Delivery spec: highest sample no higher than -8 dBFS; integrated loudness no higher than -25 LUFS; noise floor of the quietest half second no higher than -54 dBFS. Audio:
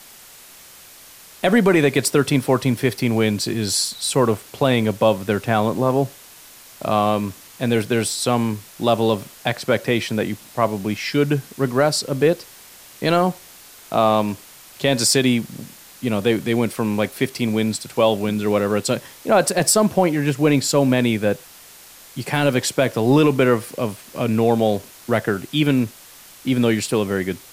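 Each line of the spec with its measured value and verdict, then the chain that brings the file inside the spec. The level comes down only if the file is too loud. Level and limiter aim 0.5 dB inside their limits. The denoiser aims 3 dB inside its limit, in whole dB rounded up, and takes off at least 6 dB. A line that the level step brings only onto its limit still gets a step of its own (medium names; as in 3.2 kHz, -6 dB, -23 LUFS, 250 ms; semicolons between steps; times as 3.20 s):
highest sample -5.0 dBFS: fail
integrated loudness -20.0 LUFS: fail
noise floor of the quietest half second -44 dBFS: fail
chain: noise reduction 8 dB, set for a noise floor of -44 dBFS; trim -5.5 dB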